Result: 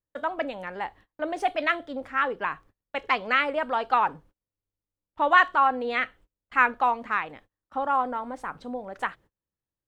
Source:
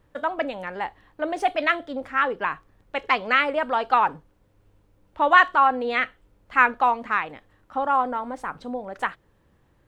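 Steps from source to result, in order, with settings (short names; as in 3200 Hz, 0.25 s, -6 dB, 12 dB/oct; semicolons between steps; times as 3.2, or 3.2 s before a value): gate -47 dBFS, range -29 dB; gain -3 dB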